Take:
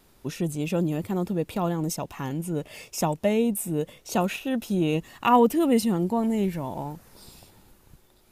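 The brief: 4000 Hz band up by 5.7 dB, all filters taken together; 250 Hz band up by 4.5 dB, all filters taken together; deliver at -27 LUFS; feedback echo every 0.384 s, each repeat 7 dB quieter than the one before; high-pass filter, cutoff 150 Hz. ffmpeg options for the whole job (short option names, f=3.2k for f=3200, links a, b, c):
-af "highpass=150,equalizer=f=250:t=o:g=6.5,equalizer=f=4k:t=o:g=8,aecho=1:1:384|768|1152|1536|1920:0.447|0.201|0.0905|0.0407|0.0183,volume=-5dB"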